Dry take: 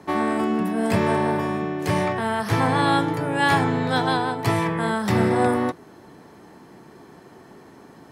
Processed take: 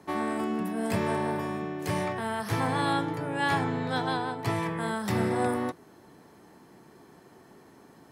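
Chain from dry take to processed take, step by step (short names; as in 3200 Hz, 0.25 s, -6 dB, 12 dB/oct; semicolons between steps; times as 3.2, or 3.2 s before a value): high shelf 7700 Hz +6.5 dB, from 2.93 s -2 dB, from 4.63 s +7 dB; gain -7.5 dB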